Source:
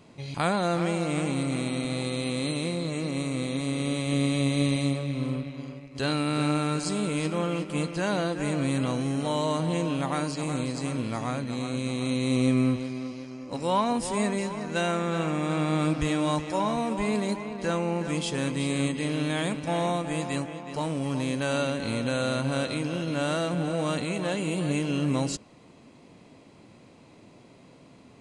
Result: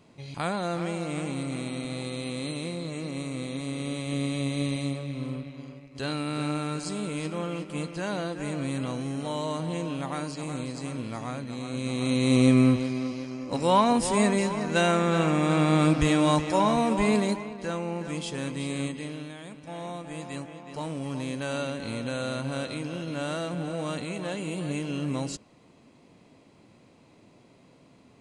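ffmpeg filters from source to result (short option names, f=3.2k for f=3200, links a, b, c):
-af "volume=15.5dB,afade=t=in:st=11.64:d=0.71:silence=0.398107,afade=t=out:st=17.13:d=0.43:silence=0.398107,afade=t=out:st=18.82:d=0.56:silence=0.266073,afade=t=in:st=19.38:d=1.51:silence=0.266073"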